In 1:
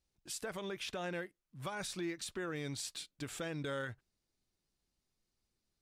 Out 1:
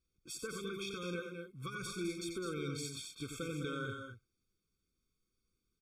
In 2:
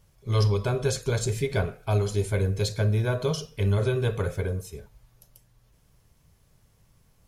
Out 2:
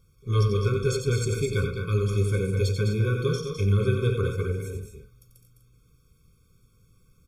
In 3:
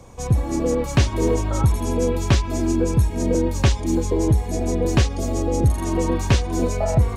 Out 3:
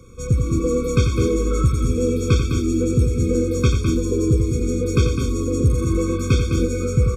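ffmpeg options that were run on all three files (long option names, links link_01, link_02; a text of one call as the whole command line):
ffmpeg -i in.wav -af "aecho=1:1:90.38|207|247.8:0.447|0.447|0.282,afftfilt=real='re*eq(mod(floor(b*sr/1024/530),2),0)':imag='im*eq(mod(floor(b*sr/1024/530),2),0)':win_size=1024:overlap=0.75" out.wav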